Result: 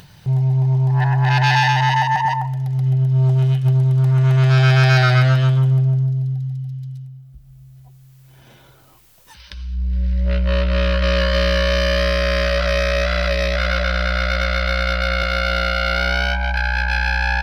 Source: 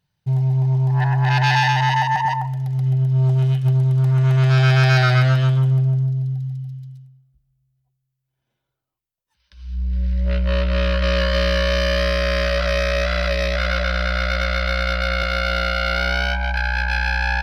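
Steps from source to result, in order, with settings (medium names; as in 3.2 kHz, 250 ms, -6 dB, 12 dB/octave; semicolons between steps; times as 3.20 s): upward compressor, threshold -25 dBFS; trim +1.5 dB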